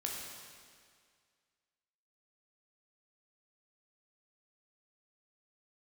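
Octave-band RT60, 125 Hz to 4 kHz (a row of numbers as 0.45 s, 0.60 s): 2.0 s, 2.0 s, 2.0 s, 2.0 s, 2.0 s, 1.9 s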